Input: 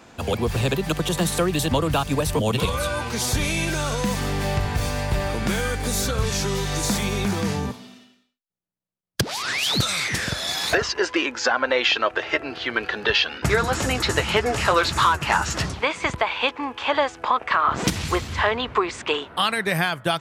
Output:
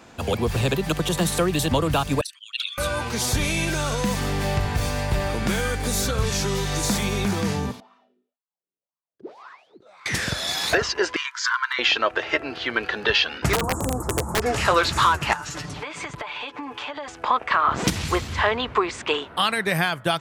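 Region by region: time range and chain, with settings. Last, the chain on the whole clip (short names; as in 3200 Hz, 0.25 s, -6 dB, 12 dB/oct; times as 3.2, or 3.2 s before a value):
2.21–2.78 formant sharpening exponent 2 + steep high-pass 1400 Hz 72 dB/oct + bell 4500 Hz +11 dB 1.5 oct
7.8–10.06 negative-ratio compressor -32 dBFS + wah 1.9 Hz 360–1100 Hz, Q 5.6
11.16–11.79 notch 2600 Hz, Q 5.3 + hard clip -10 dBFS + brick-wall FIR high-pass 920 Hz
13.53–14.42 Chebyshev band-stop 1100–8100 Hz, order 3 + wrapped overs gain 15 dB
15.33–17.08 comb 6.8 ms, depth 80% + compressor 20:1, threshold -28 dBFS
whole clip: dry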